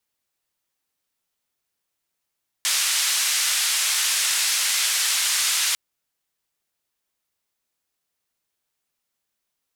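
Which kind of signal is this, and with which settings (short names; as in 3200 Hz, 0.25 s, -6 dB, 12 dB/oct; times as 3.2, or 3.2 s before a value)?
noise band 1700–9200 Hz, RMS -22 dBFS 3.10 s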